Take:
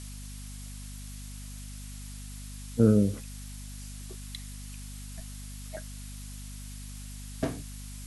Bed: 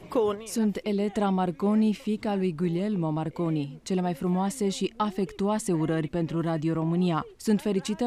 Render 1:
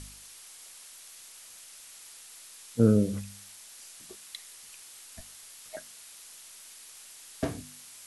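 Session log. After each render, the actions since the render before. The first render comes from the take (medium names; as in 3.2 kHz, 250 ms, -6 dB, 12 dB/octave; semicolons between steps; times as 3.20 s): de-hum 50 Hz, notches 5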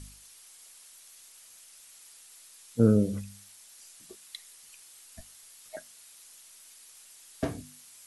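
noise reduction 6 dB, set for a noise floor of -50 dBFS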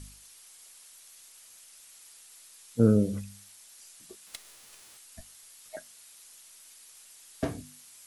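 4.26–4.96 s: formants flattened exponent 0.3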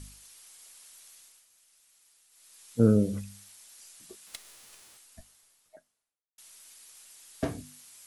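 0.98–2.79 s: dip -11 dB, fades 0.48 s equal-power; 4.59–6.38 s: studio fade out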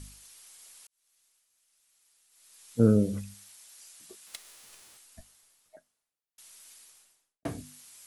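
0.87–2.78 s: fade in; 3.34–4.64 s: bass shelf 250 Hz -6.5 dB; 6.73–7.45 s: studio fade out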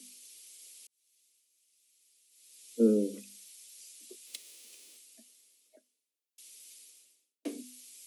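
steep high-pass 220 Hz 96 dB/octave; high-order bell 1.1 kHz -15 dB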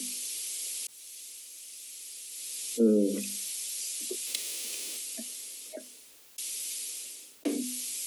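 level flattener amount 50%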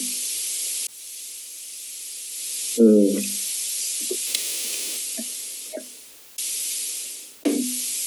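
trim +9 dB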